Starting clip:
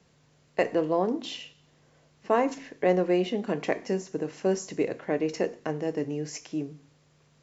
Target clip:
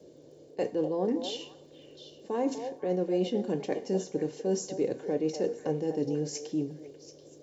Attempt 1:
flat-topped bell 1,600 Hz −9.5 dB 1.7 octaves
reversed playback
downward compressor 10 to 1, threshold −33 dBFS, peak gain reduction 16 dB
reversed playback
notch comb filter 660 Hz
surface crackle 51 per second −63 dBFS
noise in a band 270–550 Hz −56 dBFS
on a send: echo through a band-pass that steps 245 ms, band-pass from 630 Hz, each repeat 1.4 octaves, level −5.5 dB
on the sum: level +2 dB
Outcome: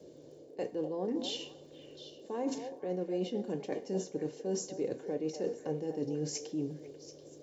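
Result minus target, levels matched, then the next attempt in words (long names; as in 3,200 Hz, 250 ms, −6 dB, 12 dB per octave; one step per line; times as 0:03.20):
downward compressor: peak gain reduction +6.5 dB
flat-topped bell 1,600 Hz −9.5 dB 1.7 octaves
reversed playback
downward compressor 10 to 1, threshold −26 dBFS, peak gain reduction 9.5 dB
reversed playback
notch comb filter 660 Hz
surface crackle 51 per second −63 dBFS
noise in a band 270–550 Hz −56 dBFS
on a send: echo through a band-pass that steps 245 ms, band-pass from 630 Hz, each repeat 1.4 octaves, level −5.5 dB
on the sum: level +2 dB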